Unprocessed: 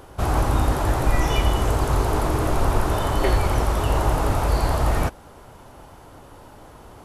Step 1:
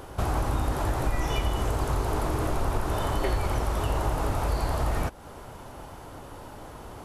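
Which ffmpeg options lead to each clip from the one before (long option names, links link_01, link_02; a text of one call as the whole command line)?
ffmpeg -i in.wav -af "acompressor=threshold=-29dB:ratio=2.5,volume=2dB" out.wav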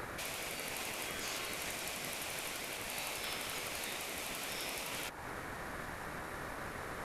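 ffmpeg -i in.wav -af "afftfilt=real='re*lt(hypot(re,im),0.0447)':imag='im*lt(hypot(re,im),0.0447)':win_size=1024:overlap=0.75,aeval=exprs='val(0)*sin(2*PI*880*n/s)':channel_layout=same,volume=3.5dB" out.wav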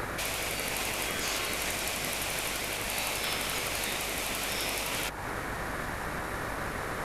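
ffmpeg -i in.wav -af "aeval=exprs='val(0)+0.00178*(sin(2*PI*50*n/s)+sin(2*PI*2*50*n/s)/2+sin(2*PI*3*50*n/s)/3+sin(2*PI*4*50*n/s)/4+sin(2*PI*5*50*n/s)/5)':channel_layout=same,volume=8.5dB" out.wav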